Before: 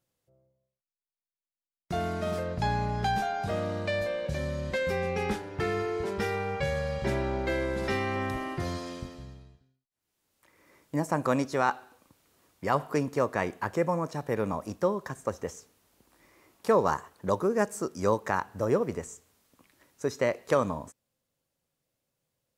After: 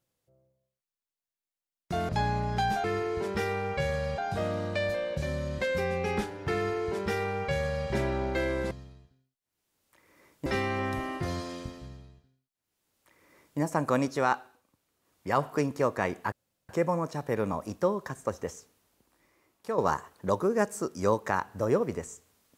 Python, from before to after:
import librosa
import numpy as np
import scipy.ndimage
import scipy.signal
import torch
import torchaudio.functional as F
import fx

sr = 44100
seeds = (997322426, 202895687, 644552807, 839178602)

y = fx.edit(x, sr, fx.cut(start_s=2.09, length_s=0.46),
    fx.duplicate(start_s=5.67, length_s=1.34, to_s=3.3),
    fx.duplicate(start_s=9.21, length_s=1.75, to_s=7.83),
    fx.fade_down_up(start_s=11.67, length_s=1.03, db=-10.0, fade_s=0.32),
    fx.insert_room_tone(at_s=13.69, length_s=0.37),
    fx.fade_out_to(start_s=15.52, length_s=1.26, curve='qua', floor_db=-9.0), tone=tone)